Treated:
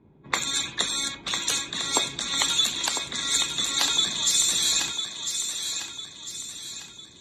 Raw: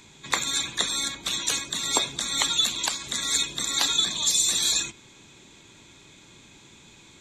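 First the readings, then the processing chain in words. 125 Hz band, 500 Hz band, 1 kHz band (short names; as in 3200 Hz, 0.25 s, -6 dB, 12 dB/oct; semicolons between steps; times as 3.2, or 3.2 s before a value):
0.0 dB, +0.5 dB, +0.5 dB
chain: HPF 42 Hz; low-pass opened by the level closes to 480 Hz, open at -23 dBFS; on a send: thinning echo 1.001 s, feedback 44%, high-pass 410 Hz, level -7 dB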